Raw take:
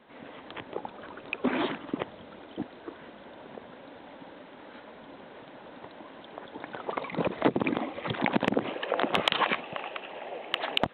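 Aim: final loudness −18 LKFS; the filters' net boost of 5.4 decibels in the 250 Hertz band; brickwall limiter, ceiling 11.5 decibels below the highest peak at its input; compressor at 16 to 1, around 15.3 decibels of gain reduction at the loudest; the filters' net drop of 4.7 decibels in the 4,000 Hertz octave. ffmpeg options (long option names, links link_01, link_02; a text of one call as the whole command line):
ffmpeg -i in.wav -af "equalizer=frequency=250:width_type=o:gain=6.5,equalizer=frequency=4000:width_type=o:gain=-7,acompressor=threshold=-32dB:ratio=16,volume=24dB,alimiter=limit=-3dB:level=0:latency=1" out.wav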